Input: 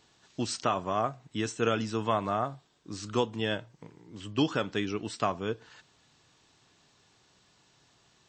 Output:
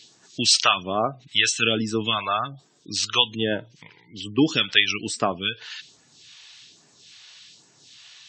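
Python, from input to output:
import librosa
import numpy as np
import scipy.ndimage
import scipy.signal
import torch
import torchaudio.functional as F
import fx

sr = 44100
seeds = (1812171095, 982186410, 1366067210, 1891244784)

y = fx.weighting(x, sr, curve='D')
y = fx.spec_gate(y, sr, threshold_db=-20, keep='strong')
y = fx.phaser_stages(y, sr, stages=2, low_hz=240.0, high_hz=3100.0, hz=1.2, feedback_pct=35)
y = y * librosa.db_to_amplitude(8.0)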